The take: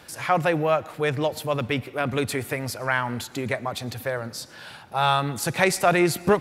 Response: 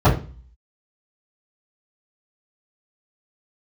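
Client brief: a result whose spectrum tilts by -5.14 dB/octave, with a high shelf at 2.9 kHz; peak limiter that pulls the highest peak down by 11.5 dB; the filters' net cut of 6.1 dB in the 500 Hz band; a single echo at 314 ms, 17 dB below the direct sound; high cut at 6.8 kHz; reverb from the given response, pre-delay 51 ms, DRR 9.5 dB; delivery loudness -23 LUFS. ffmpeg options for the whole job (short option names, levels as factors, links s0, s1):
-filter_complex "[0:a]lowpass=6800,equalizer=f=500:t=o:g=-8.5,highshelf=f=2900:g=4.5,alimiter=limit=0.188:level=0:latency=1,aecho=1:1:314:0.141,asplit=2[s0][s1];[1:a]atrim=start_sample=2205,adelay=51[s2];[s1][s2]afir=irnorm=-1:irlink=0,volume=0.0251[s3];[s0][s3]amix=inputs=2:normalize=0,volume=1.33"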